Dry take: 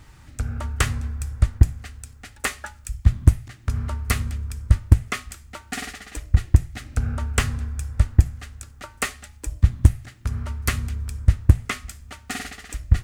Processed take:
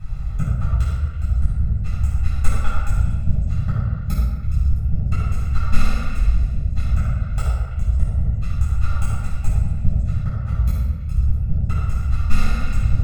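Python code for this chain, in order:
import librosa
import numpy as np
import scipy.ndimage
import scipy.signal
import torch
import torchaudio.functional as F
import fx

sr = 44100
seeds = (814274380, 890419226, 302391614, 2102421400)

p1 = fx.lower_of_two(x, sr, delay_ms=0.78)
p2 = fx.tilt_eq(p1, sr, slope=-2.5)
p3 = fx.quant_companded(p2, sr, bits=8)
p4 = p2 + (p3 * librosa.db_to_amplitude(-5.0))
p5 = fx.gate_flip(p4, sr, shuts_db=-8.0, range_db=-34)
p6 = p5 + 0.86 * np.pad(p5, (int(1.5 * sr / 1000.0), 0))[:len(p5)]
p7 = fx.room_shoebox(p6, sr, seeds[0], volume_m3=920.0, walls='mixed', distance_m=8.6)
p8 = fx.rider(p7, sr, range_db=4, speed_s=0.5)
p9 = p8 + fx.echo_stepped(p8, sr, ms=110, hz=900.0, octaves=0.7, feedback_pct=70, wet_db=-5.0, dry=0)
y = p9 * librosa.db_to_amplitude(-15.5)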